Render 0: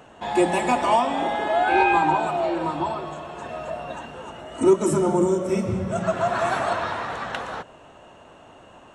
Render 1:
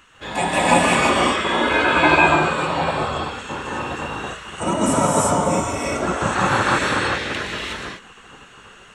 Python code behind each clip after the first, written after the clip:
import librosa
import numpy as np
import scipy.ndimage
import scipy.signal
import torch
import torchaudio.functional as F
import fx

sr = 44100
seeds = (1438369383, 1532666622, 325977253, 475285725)

y = fx.rev_gated(x, sr, seeds[0], gate_ms=390, shape='rising', drr_db=-6.5)
y = fx.spec_gate(y, sr, threshold_db=-10, keep='weak')
y = y * librosa.db_to_amplitude(4.0)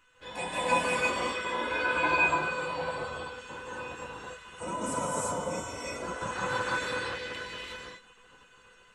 y = fx.comb_fb(x, sr, f0_hz=500.0, decay_s=0.17, harmonics='all', damping=0.0, mix_pct=90)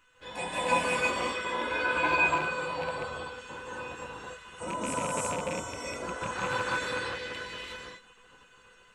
y = fx.rattle_buzz(x, sr, strikes_db=-39.0, level_db=-27.0)